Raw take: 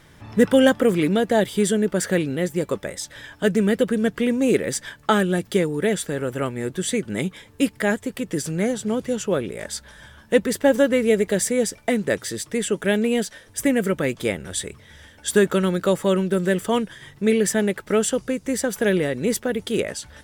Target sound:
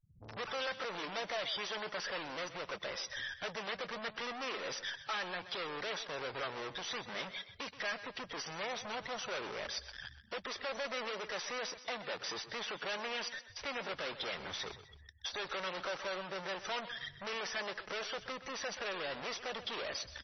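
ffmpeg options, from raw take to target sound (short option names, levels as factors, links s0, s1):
-filter_complex "[0:a]afftfilt=real='re*gte(hypot(re,im),0.02)':imag='im*gte(hypot(re,im),0.02)':win_size=1024:overlap=0.75,highshelf=f=8400:g=4,acrossover=split=410|3200[s0][s1][s2];[s0]acompressor=threshold=0.0282:ratio=6[s3];[s1]acrusher=bits=5:dc=4:mix=0:aa=0.000001[s4];[s3][s4][s2]amix=inputs=3:normalize=0,alimiter=limit=0.224:level=0:latency=1:release=494,acontrast=72,aeval=exprs='(tanh(70.8*val(0)+0.15)-tanh(0.15))/70.8':c=same,acrossover=split=520 7700:gain=0.126 1 0.112[s5][s6][s7];[s5][s6][s7]amix=inputs=3:normalize=0,asplit=2[s8][s9];[s9]aecho=0:1:127|254|381:0.211|0.0676|0.0216[s10];[s8][s10]amix=inputs=2:normalize=0,volume=1.58" -ar 24000 -c:a libmp3lame -b:a 24k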